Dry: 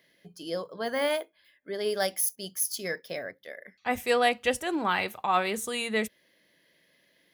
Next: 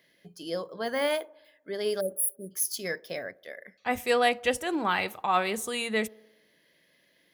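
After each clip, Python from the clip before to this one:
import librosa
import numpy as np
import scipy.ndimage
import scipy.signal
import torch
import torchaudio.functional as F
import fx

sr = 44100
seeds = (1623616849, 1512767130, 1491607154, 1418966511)

y = fx.spec_erase(x, sr, start_s=2.0, length_s=0.51, low_hz=620.0, high_hz=8100.0)
y = fx.echo_wet_bandpass(y, sr, ms=60, feedback_pct=65, hz=540.0, wet_db=-22.5)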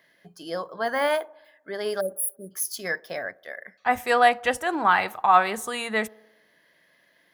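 y = fx.band_shelf(x, sr, hz=1100.0, db=8.5, octaves=1.7)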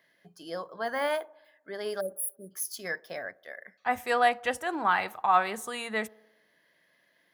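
y = scipy.signal.sosfilt(scipy.signal.butter(2, 66.0, 'highpass', fs=sr, output='sos'), x)
y = y * 10.0 ** (-5.5 / 20.0)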